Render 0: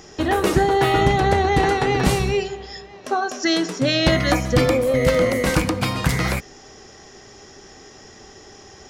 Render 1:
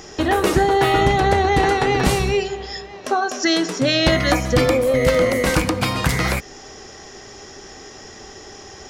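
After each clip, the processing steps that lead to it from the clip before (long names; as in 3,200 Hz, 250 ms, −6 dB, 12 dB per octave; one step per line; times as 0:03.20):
parametric band 150 Hz −3 dB 1.7 octaves
in parallel at −1.5 dB: downward compressor, threshold −27 dBFS, peak gain reduction 13 dB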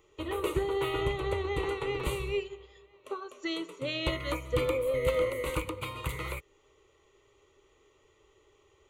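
phaser with its sweep stopped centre 1,100 Hz, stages 8
expander for the loud parts 1.5 to 1, over −39 dBFS
level −9 dB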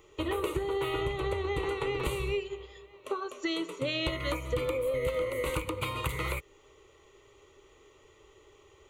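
downward compressor 6 to 1, threshold −34 dBFS, peak gain reduction 11.5 dB
level +6 dB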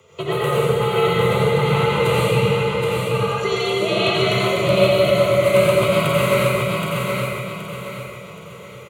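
frequency shifter +63 Hz
repeating echo 773 ms, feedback 37%, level −3.5 dB
convolution reverb RT60 1.8 s, pre-delay 80 ms, DRR −7 dB
level +5.5 dB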